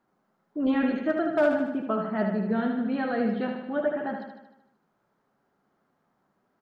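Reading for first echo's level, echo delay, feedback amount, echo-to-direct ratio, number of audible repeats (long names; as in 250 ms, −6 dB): −5.5 dB, 76 ms, 57%, −4.0 dB, 7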